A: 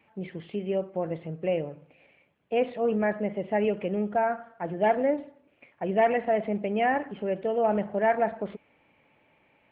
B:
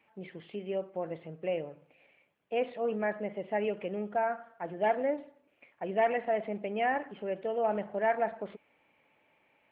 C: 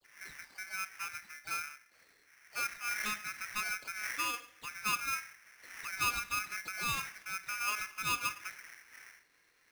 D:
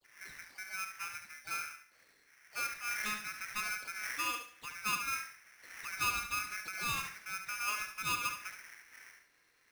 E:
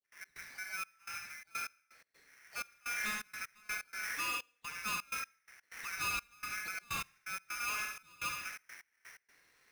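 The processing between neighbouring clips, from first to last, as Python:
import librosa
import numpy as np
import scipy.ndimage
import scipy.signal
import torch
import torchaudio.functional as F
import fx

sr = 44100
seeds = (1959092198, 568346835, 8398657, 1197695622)

y1 = fx.low_shelf(x, sr, hz=240.0, db=-9.5)
y1 = F.gain(torch.from_numpy(y1), -3.5).numpy()
y2 = fx.dmg_wind(y1, sr, seeds[0], corner_hz=370.0, level_db=-47.0)
y2 = fx.dispersion(y2, sr, late='lows', ms=42.0, hz=1400.0)
y2 = y2 * np.sign(np.sin(2.0 * np.pi * 1900.0 * np.arange(len(y2)) / sr))
y2 = F.gain(torch.from_numpy(y2), -6.0).numpy()
y3 = fx.echo_feedback(y2, sr, ms=71, feedback_pct=26, wet_db=-8)
y3 = F.gain(torch.from_numpy(y3), -1.5).numpy()
y4 = 10.0 ** (-34.0 / 20.0) * np.tanh(y3 / 10.0 ** (-34.0 / 20.0))
y4 = fx.rev_gated(y4, sr, seeds[1], gate_ms=180, shape='flat', drr_db=5.5)
y4 = fx.step_gate(y4, sr, bpm=126, pattern='.x.xxxx..xxx.x.', floor_db=-24.0, edge_ms=4.5)
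y4 = F.gain(torch.from_numpy(y4), 1.0).numpy()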